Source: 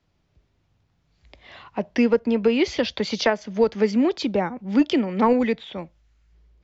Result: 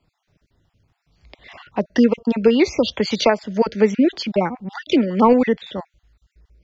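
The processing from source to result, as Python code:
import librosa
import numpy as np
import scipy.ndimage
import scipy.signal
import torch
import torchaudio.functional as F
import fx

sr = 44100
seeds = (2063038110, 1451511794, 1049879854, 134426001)

y = fx.spec_dropout(x, sr, seeds[0], share_pct=38)
y = y * librosa.db_to_amplitude(5.0)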